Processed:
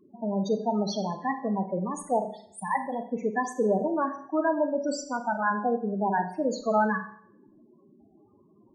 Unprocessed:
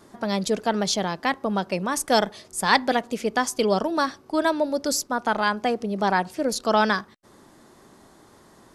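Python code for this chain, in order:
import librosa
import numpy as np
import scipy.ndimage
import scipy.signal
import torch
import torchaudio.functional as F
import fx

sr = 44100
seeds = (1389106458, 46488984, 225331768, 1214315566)

y = fx.level_steps(x, sr, step_db=9, at=(1.88, 3.0))
y = fx.spec_topn(y, sr, count=8)
y = fx.rev_schroeder(y, sr, rt60_s=0.6, comb_ms=30, drr_db=7.5)
y = y * librosa.db_to_amplitude(-2.5)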